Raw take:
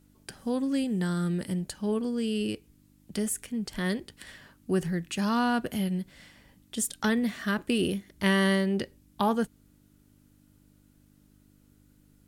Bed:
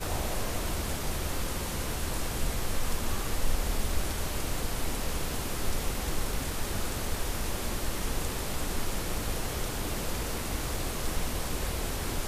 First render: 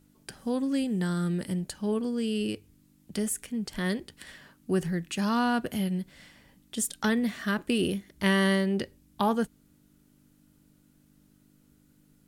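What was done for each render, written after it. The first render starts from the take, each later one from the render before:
hum removal 50 Hz, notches 2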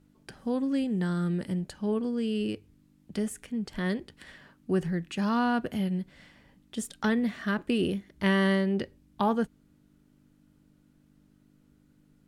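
low-pass filter 2,800 Hz 6 dB per octave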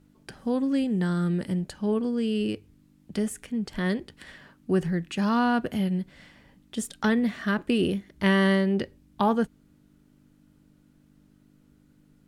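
level +3 dB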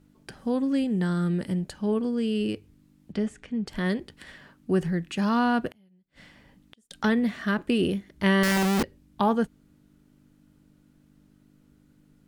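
0:03.12–0:03.67: high-frequency loss of the air 120 metres
0:05.68–0:06.91: gate with flip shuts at −33 dBFS, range −34 dB
0:08.43–0:08.83: comparator with hysteresis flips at −35 dBFS

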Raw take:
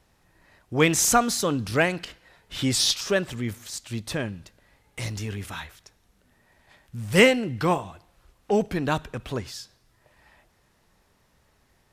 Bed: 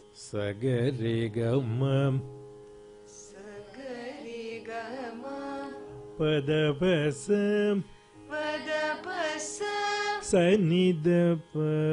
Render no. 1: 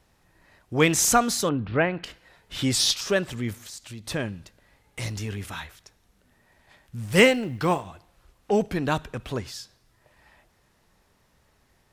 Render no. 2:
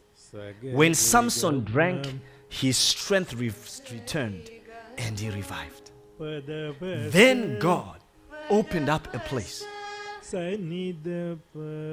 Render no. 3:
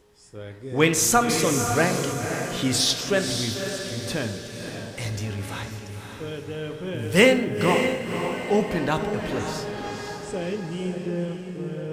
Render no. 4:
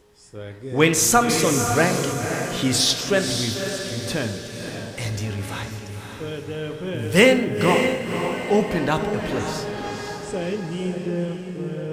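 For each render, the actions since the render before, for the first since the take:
0:01.49–0:02.04: Bessel low-pass filter 2,000 Hz, order 8; 0:03.62–0:04.07: downward compressor 3 to 1, threshold −38 dBFS; 0:07.06–0:07.87: mu-law and A-law mismatch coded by A
mix in bed −8 dB
on a send: feedback delay with all-pass diffusion 543 ms, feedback 46%, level −6 dB; on the sum: dense smooth reverb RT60 0.98 s, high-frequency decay 0.55×, DRR 8.5 dB
level +2.5 dB; brickwall limiter −3 dBFS, peak gain reduction 1 dB

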